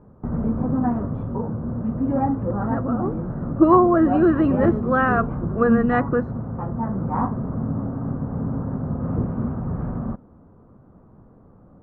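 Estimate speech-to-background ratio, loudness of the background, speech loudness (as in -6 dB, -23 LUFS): 5.5 dB, -25.5 LUFS, -20.0 LUFS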